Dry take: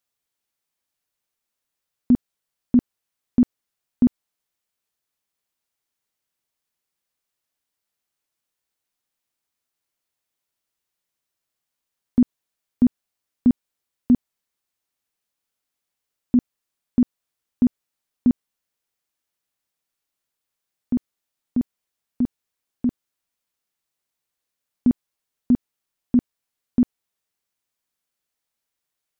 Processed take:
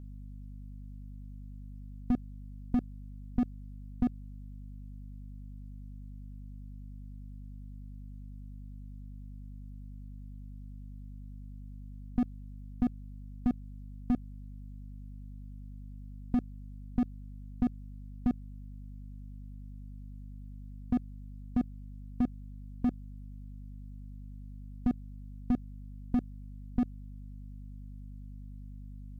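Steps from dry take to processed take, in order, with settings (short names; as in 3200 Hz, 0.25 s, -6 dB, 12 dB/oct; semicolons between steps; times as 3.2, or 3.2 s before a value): harmonic-percussive split harmonic -11 dB; hum 50 Hz, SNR 18 dB; slew limiter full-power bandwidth 13 Hz; gain +1.5 dB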